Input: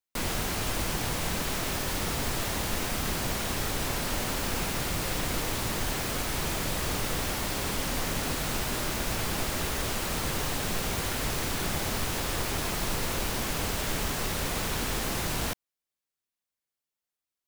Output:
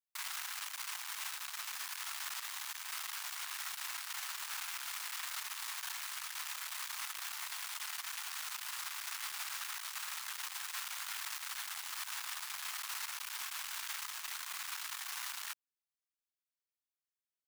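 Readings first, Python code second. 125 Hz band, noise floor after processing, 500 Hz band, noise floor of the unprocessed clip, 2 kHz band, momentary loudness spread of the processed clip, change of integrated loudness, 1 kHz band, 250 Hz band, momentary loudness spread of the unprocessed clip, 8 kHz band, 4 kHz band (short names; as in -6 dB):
under -40 dB, under -85 dBFS, -34.0 dB, under -85 dBFS, -9.0 dB, 1 LU, -10.0 dB, -12.5 dB, under -40 dB, 0 LU, -8.5 dB, -8.5 dB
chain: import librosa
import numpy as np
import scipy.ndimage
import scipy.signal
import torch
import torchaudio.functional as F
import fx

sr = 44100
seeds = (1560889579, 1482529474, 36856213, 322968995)

y = np.maximum(x, 0.0)
y = scipy.signal.sosfilt(scipy.signal.cheby2(4, 40, 500.0, 'highpass', fs=sr, output='sos'), y)
y = F.gain(torch.from_numpy(y), -4.5).numpy()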